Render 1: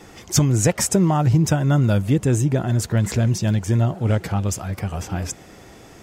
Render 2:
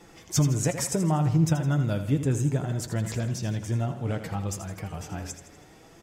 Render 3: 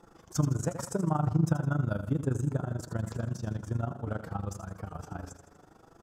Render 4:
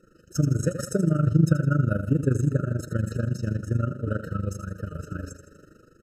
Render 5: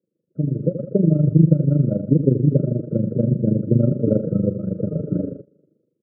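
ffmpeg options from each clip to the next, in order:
-filter_complex "[0:a]flanger=delay=5.8:depth=1.5:regen=54:speed=0.66:shape=triangular,asplit=2[a][b];[b]aecho=0:1:81|162|243|324|405:0.299|0.149|0.0746|0.0373|0.0187[c];[a][c]amix=inputs=2:normalize=0,volume=-4dB"
-af "highshelf=f=1.7k:t=q:w=3:g=-6.5,tremolo=f=25:d=0.824,volume=-1.5dB"
-af "dynaudnorm=f=160:g=5:m=7dB,afftfilt=real='re*eq(mod(floor(b*sr/1024/620),2),0)':imag='im*eq(mod(floor(b*sr/1024/620),2),0)':win_size=1024:overlap=0.75"
-af "agate=range=-18dB:threshold=-44dB:ratio=16:detection=peak,asuperpass=centerf=290:order=8:qfactor=0.56,dynaudnorm=f=140:g=9:m=16dB,volume=-1dB"

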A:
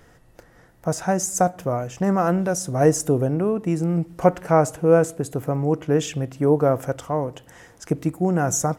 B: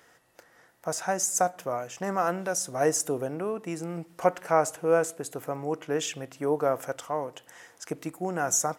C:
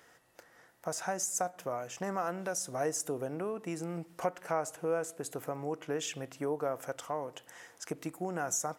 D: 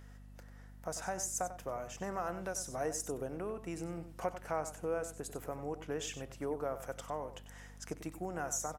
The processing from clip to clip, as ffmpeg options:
-af "highpass=f=870:p=1,volume=-1dB"
-af "acompressor=threshold=-32dB:ratio=2,volume=-2dB"
-af "aecho=1:1:95:0.251,aeval=exprs='val(0)+0.00398*(sin(2*PI*50*n/s)+sin(2*PI*2*50*n/s)/2+sin(2*PI*3*50*n/s)/3+sin(2*PI*4*50*n/s)/4+sin(2*PI*5*50*n/s)/5)':c=same,volume=-4dB"

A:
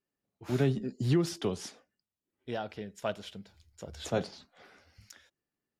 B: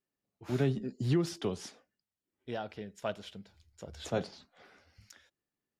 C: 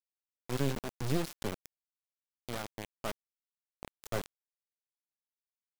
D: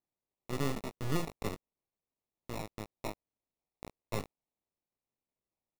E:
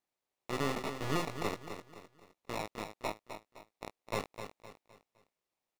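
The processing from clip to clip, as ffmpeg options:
-af "highshelf=f=8.5k:g=-4,volume=-2dB"
-af "acrusher=bits=3:dc=4:mix=0:aa=0.000001"
-filter_complex "[0:a]acrusher=samples=28:mix=1:aa=0.000001,asplit=2[a][b];[b]adelay=19,volume=-11dB[c];[a][c]amix=inputs=2:normalize=0,volume=-1.5dB"
-filter_complex "[0:a]asplit=2[a][b];[b]highpass=f=720:p=1,volume=12dB,asoftclip=type=tanh:threshold=-18.5dB[c];[a][c]amix=inputs=2:normalize=0,lowpass=f=4.6k:p=1,volume=-6dB,asplit=2[d][e];[e]aecho=0:1:257|514|771|1028:0.355|0.135|0.0512|0.0195[f];[d][f]amix=inputs=2:normalize=0"

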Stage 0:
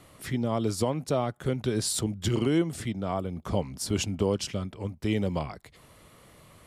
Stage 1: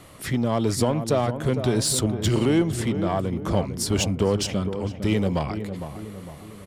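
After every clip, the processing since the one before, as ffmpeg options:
-filter_complex "[0:a]asplit=2[a][b];[b]asoftclip=type=hard:threshold=-28.5dB,volume=-3dB[c];[a][c]amix=inputs=2:normalize=0,asplit=2[d][e];[e]adelay=456,lowpass=f=1.2k:p=1,volume=-8.5dB,asplit=2[f][g];[g]adelay=456,lowpass=f=1.2k:p=1,volume=0.51,asplit=2[h][i];[i]adelay=456,lowpass=f=1.2k:p=1,volume=0.51,asplit=2[j][k];[k]adelay=456,lowpass=f=1.2k:p=1,volume=0.51,asplit=2[l][m];[m]adelay=456,lowpass=f=1.2k:p=1,volume=0.51,asplit=2[n][o];[o]adelay=456,lowpass=f=1.2k:p=1,volume=0.51[p];[d][f][h][j][l][n][p]amix=inputs=7:normalize=0,volume=2dB"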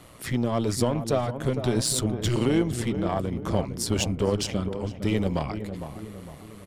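-af "tremolo=f=120:d=0.571"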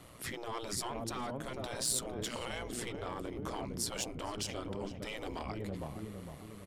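-filter_complex "[0:a]afftfilt=real='re*lt(hypot(re,im),0.2)':imag='im*lt(hypot(re,im),0.2)':win_size=1024:overlap=0.75,acrossover=split=6800[a][b];[a]alimiter=limit=-24dB:level=0:latency=1:release=70[c];[c][b]amix=inputs=2:normalize=0,volume=-5dB"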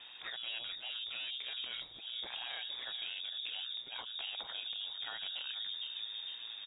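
-af "acompressor=threshold=-41dB:ratio=6,lowpass=f=3.2k:t=q:w=0.5098,lowpass=f=3.2k:t=q:w=0.6013,lowpass=f=3.2k:t=q:w=0.9,lowpass=f=3.2k:t=q:w=2.563,afreqshift=-3800,volume=3dB"

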